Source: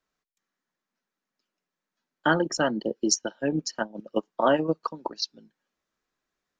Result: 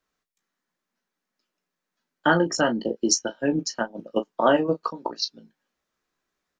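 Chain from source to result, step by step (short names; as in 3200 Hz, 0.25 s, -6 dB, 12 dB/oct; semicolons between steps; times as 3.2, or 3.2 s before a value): early reflections 17 ms -8.5 dB, 35 ms -13 dB; gain +2 dB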